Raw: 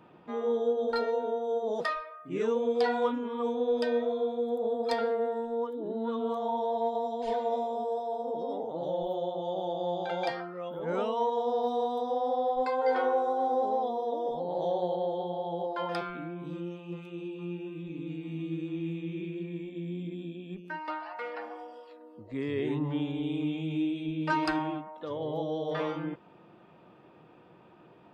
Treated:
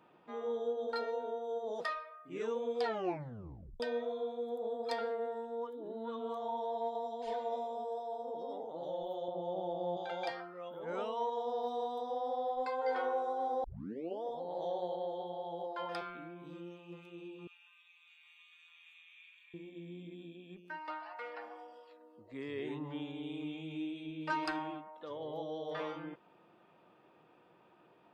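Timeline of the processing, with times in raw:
2.83 tape stop 0.97 s
9.28–9.97 tilt -3 dB/oct
13.64 tape start 0.59 s
17.47–19.54 steep high-pass 1100 Hz
whole clip: low shelf 270 Hz -10 dB; gain -5.5 dB

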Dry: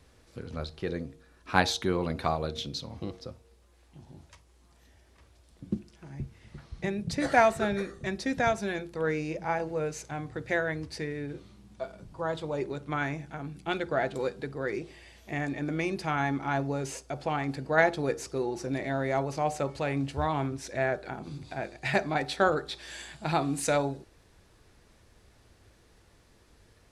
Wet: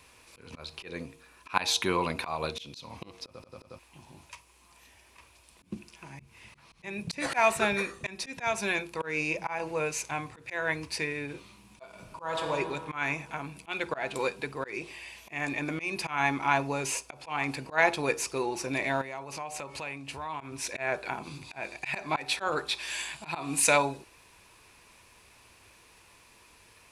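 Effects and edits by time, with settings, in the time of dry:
3.25 stutter in place 0.09 s, 6 plays
11.88–12.52 reverb throw, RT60 2.3 s, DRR 4 dB
19.01–20.41 compressor, threshold -38 dBFS
whole clip: tilt +2 dB/oct; auto swell 0.194 s; thirty-one-band EQ 1000 Hz +11 dB, 2500 Hz +12 dB, 10000 Hz +4 dB; gain +1.5 dB

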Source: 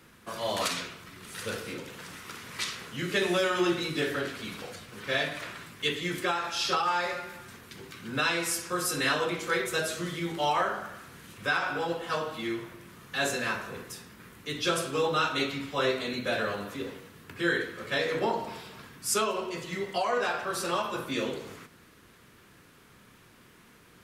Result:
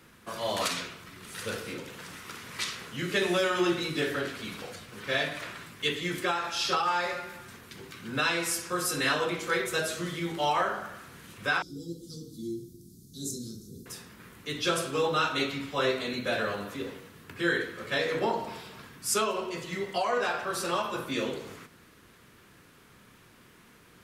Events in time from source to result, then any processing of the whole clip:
11.62–13.86 inverse Chebyshev band-stop 600–2800 Hz

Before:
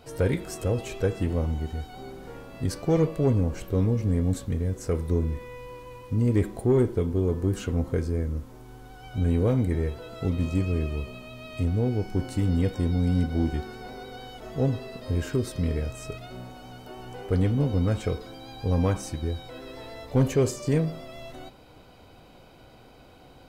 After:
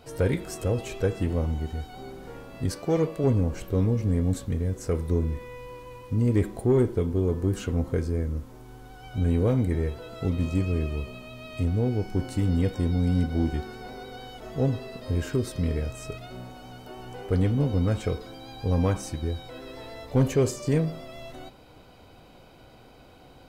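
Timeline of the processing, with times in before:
2.72–3.24 low shelf 120 Hz -11.5 dB

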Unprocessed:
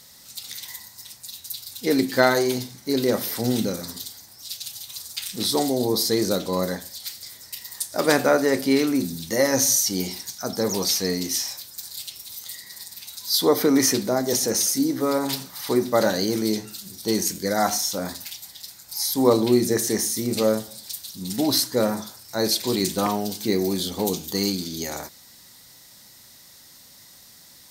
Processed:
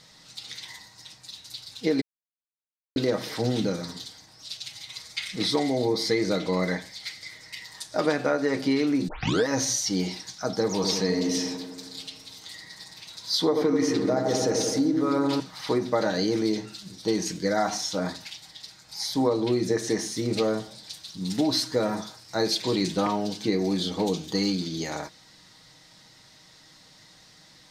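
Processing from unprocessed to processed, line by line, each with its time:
2.01–2.96 mute
4.66–7.65 bell 2100 Hz +13 dB 0.25 oct
9.08 tape start 0.40 s
10.75–15.4 dark delay 86 ms, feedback 70%, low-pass 1200 Hz, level -4 dB
21.22–22.61 high shelf 7300 Hz +5.5 dB
whole clip: LPF 4500 Hz 12 dB/oct; comb 6.4 ms, depth 45%; compressor 6:1, threshold -20 dBFS

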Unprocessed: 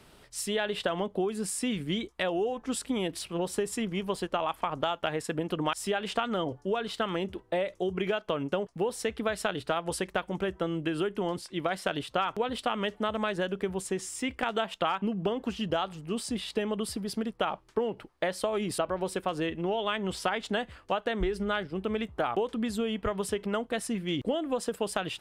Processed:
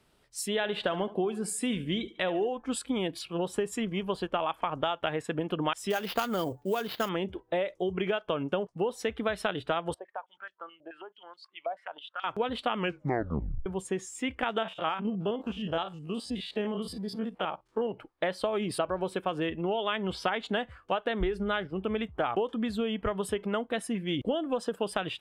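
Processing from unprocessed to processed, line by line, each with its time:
0.53–2.49 feedback echo 72 ms, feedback 47%, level -16 dB
5.9–7.09 sample-rate reducer 8200 Hz, jitter 20%
9.94–12.24 stepped band-pass 9.3 Hz 670–4300 Hz
12.76 tape stop 0.90 s
14.58–17.93 stepped spectrum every 50 ms
whole clip: spectral noise reduction 11 dB

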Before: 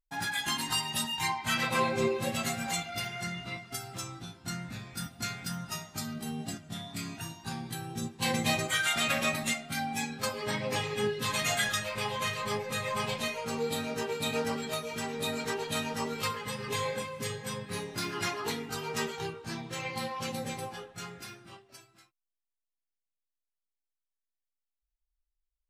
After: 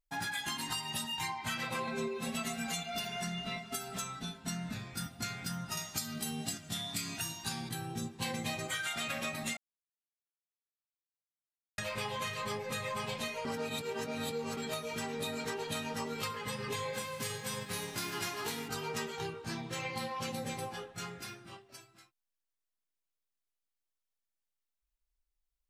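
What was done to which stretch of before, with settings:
1.87–4.74 comb 4.6 ms, depth 96%
5.77–7.69 high shelf 2100 Hz +11 dB
9.57–11.78 mute
13.45–14.57 reverse
16.93–18.67 spectral whitening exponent 0.6
whole clip: compressor, threshold -34 dBFS

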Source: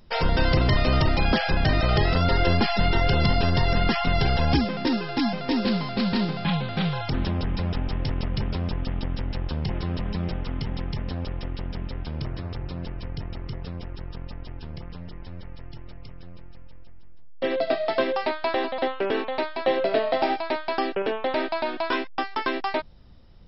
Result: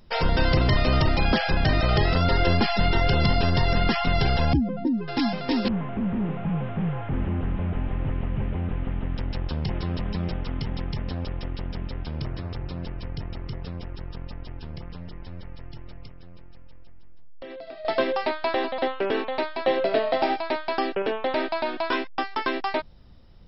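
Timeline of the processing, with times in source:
4.53–5.08 spectral contrast raised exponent 2.2
5.68–9.18 delta modulation 16 kbps, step -43.5 dBFS
16.07–17.85 compressor, threshold -37 dBFS

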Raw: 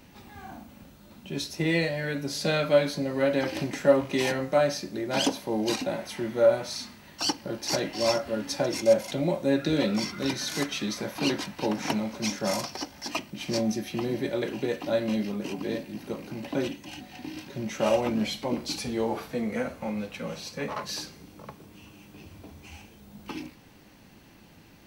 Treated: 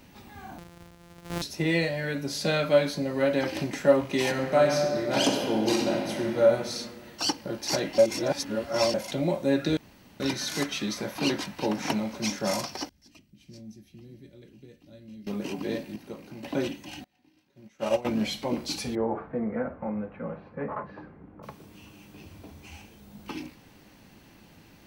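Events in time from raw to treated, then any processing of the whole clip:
0.58–1.42 sample sorter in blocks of 256 samples
4.29–6.4 reverb throw, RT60 2.2 s, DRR 1.5 dB
7.98–8.94 reverse
9.77–10.2 room tone
12.89–15.27 passive tone stack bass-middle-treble 10-0-1
15.96–16.43 gain -6 dB
17.04–18.05 upward expander 2.5:1, over -37 dBFS
18.95–21.43 LPF 1600 Hz 24 dB/oct

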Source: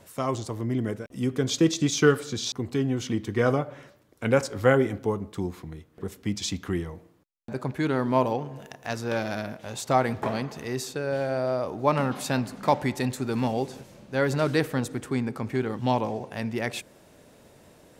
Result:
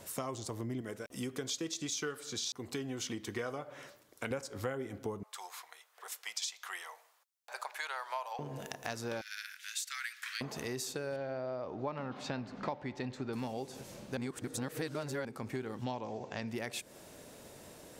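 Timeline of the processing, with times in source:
0.81–4.31 low shelf 380 Hz -8.5 dB
5.23–8.39 inverse Chebyshev high-pass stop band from 290 Hz, stop band 50 dB
9.21–10.41 steep high-pass 1500 Hz 48 dB/oct
11.16–13.33 air absorption 190 m
14.17–15.25 reverse
15.84–16.48 steep low-pass 7700 Hz 72 dB/oct
whole clip: tone controls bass -3 dB, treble +5 dB; compressor 6:1, threshold -37 dBFS; gain +1 dB

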